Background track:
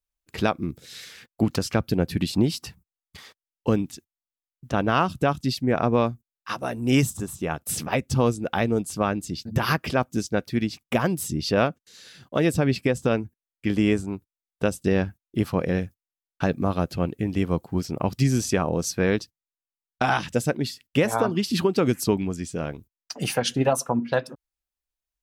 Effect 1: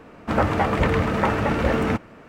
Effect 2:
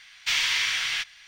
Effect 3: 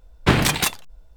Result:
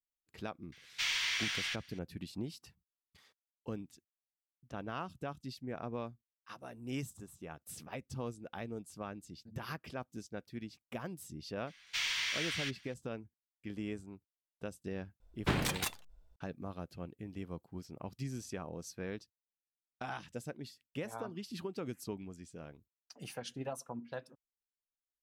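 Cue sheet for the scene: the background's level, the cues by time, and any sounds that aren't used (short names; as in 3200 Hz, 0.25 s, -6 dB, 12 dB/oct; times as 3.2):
background track -19.5 dB
0.72 add 2 -9.5 dB
11.67 add 2 -10.5 dB
15.2 add 3 -15 dB
not used: 1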